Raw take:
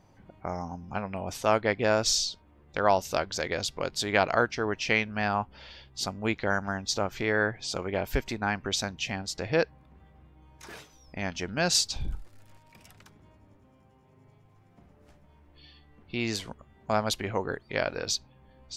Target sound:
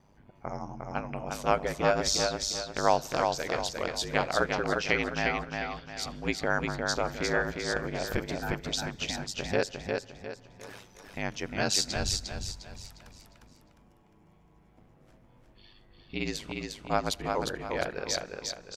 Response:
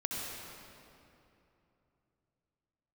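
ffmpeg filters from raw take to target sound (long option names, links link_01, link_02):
-filter_complex "[0:a]aeval=exprs='val(0)*sin(2*PI*50*n/s)':channel_layout=same,aecho=1:1:354|708|1062|1416|1770:0.631|0.233|0.0864|0.032|0.0118,asplit=2[link_01][link_02];[1:a]atrim=start_sample=2205,asetrate=61740,aresample=44100,adelay=83[link_03];[link_02][link_03]afir=irnorm=-1:irlink=0,volume=-24.5dB[link_04];[link_01][link_04]amix=inputs=2:normalize=0"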